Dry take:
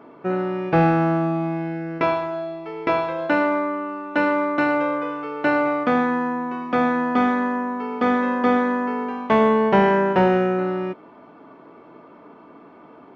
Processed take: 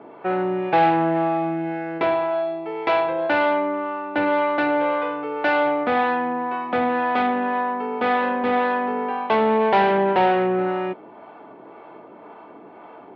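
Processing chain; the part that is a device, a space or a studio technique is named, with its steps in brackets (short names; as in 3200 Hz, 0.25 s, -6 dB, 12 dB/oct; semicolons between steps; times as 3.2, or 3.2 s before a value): guitar amplifier with harmonic tremolo (harmonic tremolo 1.9 Hz, depth 50%, crossover 540 Hz; soft clip -20.5 dBFS, distortion -11 dB; speaker cabinet 110–3900 Hz, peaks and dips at 160 Hz -7 dB, 260 Hz -7 dB, 790 Hz +6 dB, 1200 Hz -4 dB); gain +6 dB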